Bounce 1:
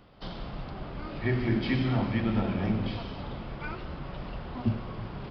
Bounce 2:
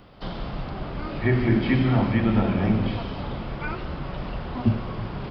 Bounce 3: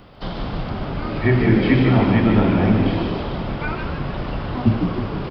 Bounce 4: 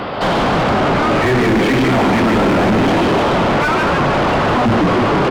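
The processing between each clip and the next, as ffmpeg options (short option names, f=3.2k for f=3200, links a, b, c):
-filter_complex "[0:a]acrossover=split=3000[a][b];[b]acompressor=threshold=-54dB:ratio=4:attack=1:release=60[c];[a][c]amix=inputs=2:normalize=0,volume=6.5dB"
-filter_complex "[0:a]asplit=7[a][b][c][d][e][f][g];[b]adelay=151,afreqshift=68,volume=-7dB[h];[c]adelay=302,afreqshift=136,volume=-12.5dB[i];[d]adelay=453,afreqshift=204,volume=-18dB[j];[e]adelay=604,afreqshift=272,volume=-23.5dB[k];[f]adelay=755,afreqshift=340,volume=-29.1dB[l];[g]adelay=906,afreqshift=408,volume=-34.6dB[m];[a][h][i][j][k][l][m]amix=inputs=7:normalize=0,volume=4.5dB"
-filter_complex "[0:a]asplit=2[a][b];[b]highpass=f=720:p=1,volume=40dB,asoftclip=type=tanh:threshold=-2.5dB[c];[a][c]amix=inputs=2:normalize=0,lowpass=f=1.2k:p=1,volume=-6dB,volume=8dB,asoftclip=hard,volume=-8dB,volume=-2.5dB"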